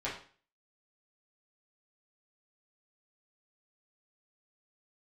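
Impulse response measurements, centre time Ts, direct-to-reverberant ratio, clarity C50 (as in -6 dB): 32 ms, -8.0 dB, 6.0 dB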